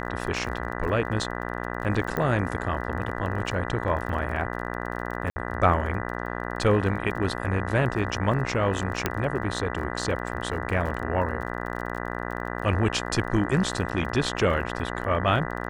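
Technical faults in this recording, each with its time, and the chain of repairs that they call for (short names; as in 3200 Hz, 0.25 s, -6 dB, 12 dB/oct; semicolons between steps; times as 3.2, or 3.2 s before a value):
buzz 60 Hz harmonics 33 -32 dBFS
crackle 28/s -34 dBFS
2.17 pop -15 dBFS
5.3–5.36 gap 60 ms
9.06 pop -8 dBFS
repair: de-click; de-hum 60 Hz, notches 33; interpolate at 5.3, 60 ms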